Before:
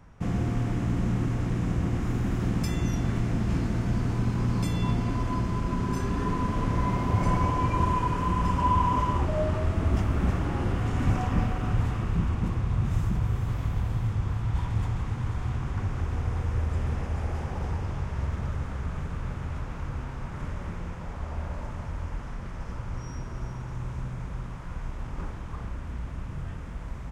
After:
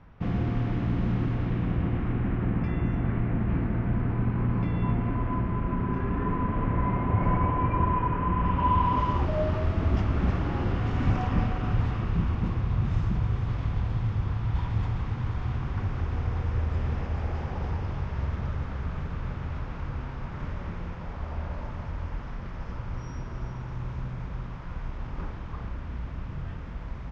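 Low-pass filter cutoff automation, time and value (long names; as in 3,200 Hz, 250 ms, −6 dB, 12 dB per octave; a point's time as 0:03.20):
low-pass filter 24 dB per octave
0:01.23 4,200 Hz
0:02.53 2,400 Hz
0:08.31 2,400 Hz
0:09.11 5,100 Hz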